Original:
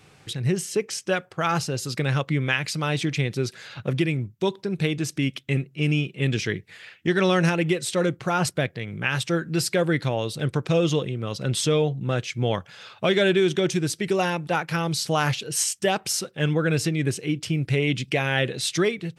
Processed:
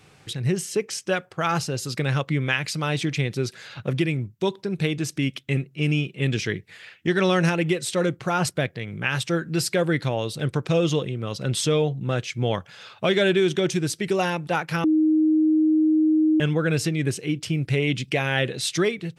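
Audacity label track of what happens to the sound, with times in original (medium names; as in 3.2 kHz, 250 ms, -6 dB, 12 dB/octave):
14.840000	16.400000	bleep 312 Hz -15.5 dBFS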